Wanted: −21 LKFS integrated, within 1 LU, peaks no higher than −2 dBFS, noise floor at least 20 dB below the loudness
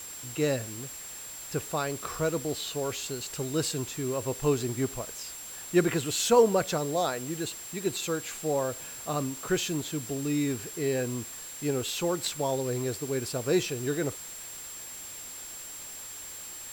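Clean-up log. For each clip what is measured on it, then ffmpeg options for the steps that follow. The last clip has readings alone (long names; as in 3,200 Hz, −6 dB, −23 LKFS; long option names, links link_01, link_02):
interfering tone 7,500 Hz; level of the tone −41 dBFS; background noise floor −42 dBFS; target noise floor −51 dBFS; integrated loudness −30.5 LKFS; sample peak −9.5 dBFS; target loudness −21.0 LKFS
→ -af "bandreject=frequency=7500:width=30"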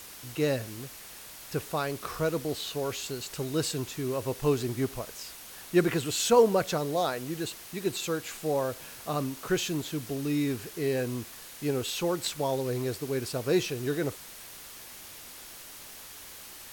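interfering tone none found; background noise floor −46 dBFS; target noise floor −50 dBFS
→ -af "afftdn=noise_reduction=6:noise_floor=-46"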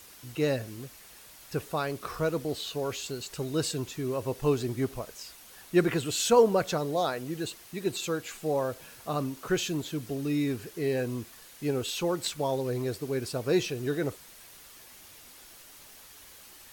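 background noise floor −52 dBFS; integrated loudness −30.0 LKFS; sample peak −9.5 dBFS; target loudness −21.0 LKFS
→ -af "volume=9dB,alimiter=limit=-2dB:level=0:latency=1"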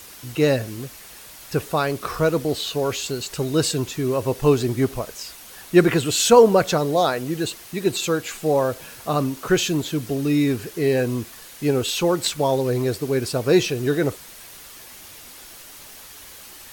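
integrated loudness −21.5 LKFS; sample peak −2.0 dBFS; background noise floor −43 dBFS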